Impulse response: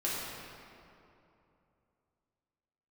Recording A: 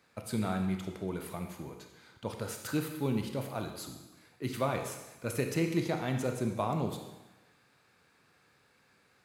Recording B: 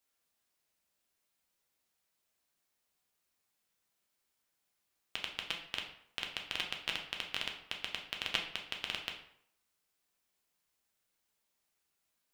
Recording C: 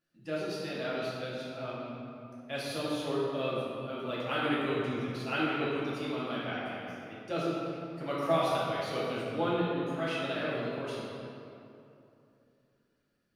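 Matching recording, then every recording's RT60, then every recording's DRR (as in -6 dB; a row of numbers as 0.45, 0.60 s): C; 1.1, 0.70, 2.8 s; 4.0, 1.0, -8.0 dB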